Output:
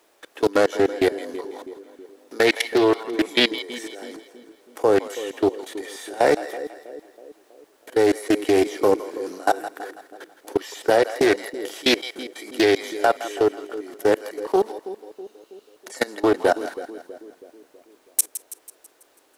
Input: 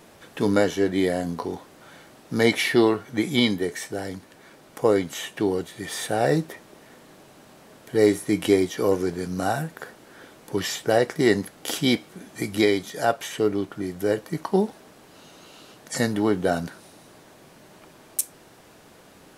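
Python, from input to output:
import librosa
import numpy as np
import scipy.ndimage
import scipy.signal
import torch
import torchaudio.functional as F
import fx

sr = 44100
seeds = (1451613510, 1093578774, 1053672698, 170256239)

y = scipy.signal.sosfilt(scipy.signal.butter(6, 300.0, 'highpass', fs=sr, output='sos'), x)
y = fx.level_steps(y, sr, step_db=23)
y = fx.quant_dither(y, sr, seeds[0], bits=12, dither='none')
y = fx.echo_split(y, sr, split_hz=550.0, low_ms=324, high_ms=164, feedback_pct=52, wet_db=-13)
y = fx.doppler_dist(y, sr, depth_ms=0.27)
y = F.gain(torch.from_numpy(y), 7.5).numpy()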